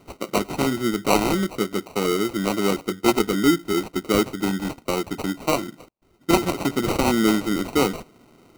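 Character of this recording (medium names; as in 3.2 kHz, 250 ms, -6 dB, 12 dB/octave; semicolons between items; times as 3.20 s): aliases and images of a low sample rate 1.7 kHz, jitter 0%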